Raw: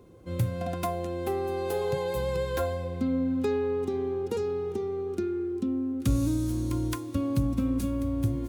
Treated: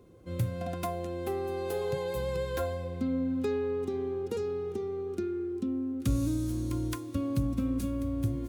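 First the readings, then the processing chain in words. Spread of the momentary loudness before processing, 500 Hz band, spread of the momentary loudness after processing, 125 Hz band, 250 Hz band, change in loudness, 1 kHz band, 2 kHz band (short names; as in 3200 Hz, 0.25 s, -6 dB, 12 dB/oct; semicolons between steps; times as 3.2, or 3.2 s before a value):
4 LU, -3.0 dB, 4 LU, -3.0 dB, -3.0 dB, -3.0 dB, -4.5 dB, -3.0 dB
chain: bell 890 Hz -6 dB 0.22 oct; gain -3 dB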